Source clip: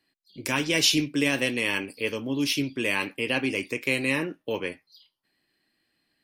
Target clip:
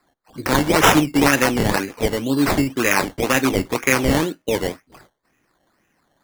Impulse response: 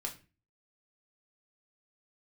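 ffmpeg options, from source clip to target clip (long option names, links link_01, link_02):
-filter_complex "[0:a]asettb=1/sr,asplit=3[link_01][link_02][link_03];[link_01]atrim=end=0.904[link_04];[link_02]atrim=start=0.9:end=1.63,asetpts=PTS-STARTPTS,afade=type=in:duration=0.004:curve=qsin,afade=type=out:start_time=0.726:duration=0.004:curve=qsin,equalizer=frequency=14000:width_type=o:width=0.82:gain=11.5[link_05];[link_03]atrim=start=1.626[link_06];[link_04][link_05]acrossfade=duration=0.004:curve1=hsin:curve2=qsin[link_07];[link_07][link_06]acrossfade=duration=0.004:curve1=qsin:curve2=hsin,acrusher=samples=14:mix=1:aa=0.000001:lfo=1:lforange=8.4:lforate=2,volume=8.5dB"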